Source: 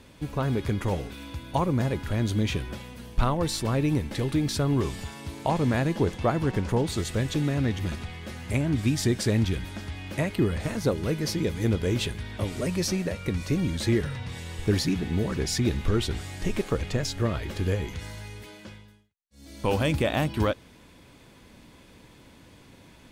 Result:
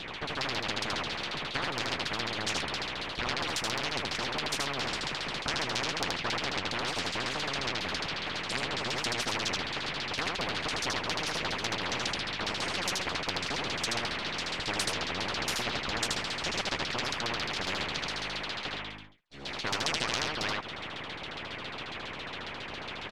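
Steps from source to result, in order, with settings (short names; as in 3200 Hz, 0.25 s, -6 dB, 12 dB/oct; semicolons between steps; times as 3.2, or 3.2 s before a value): full-wave rectifier; LFO low-pass saw down 7.3 Hz 890–4300 Hz; harmonic-percussive split harmonic -11 dB; on a send: echo 78 ms -3.5 dB; on the sum: spectral compressor 4:1; gain +1.5 dB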